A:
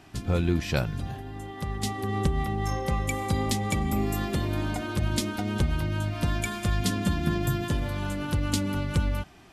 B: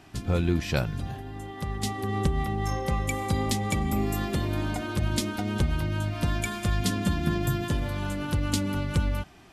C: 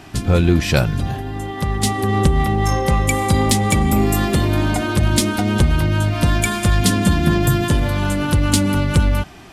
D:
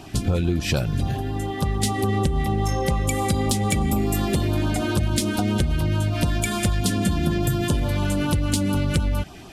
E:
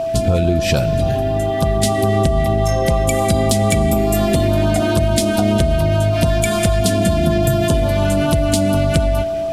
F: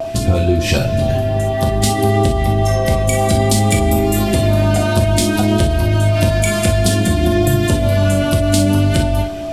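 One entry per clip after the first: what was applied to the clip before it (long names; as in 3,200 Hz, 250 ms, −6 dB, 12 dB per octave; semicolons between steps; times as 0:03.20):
no processing that can be heard
dynamic equaliser 9,200 Hz, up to +5 dB, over −52 dBFS, Q 2.1; in parallel at −4.5 dB: soft clipping −25 dBFS, distortion −11 dB; on the sum: level +8 dB
downward compressor, threshold −18 dBFS, peak gain reduction 9 dB; auto-filter notch sine 6.9 Hz 930–2,100 Hz
comb and all-pass reverb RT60 3.6 s, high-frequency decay 0.8×, pre-delay 10 ms, DRR 13.5 dB; steady tone 660 Hz −23 dBFS; level +5 dB
pitch vibrato 0.58 Hz 19 cents; reverb whose tail is shaped and stops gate 80 ms flat, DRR 2 dB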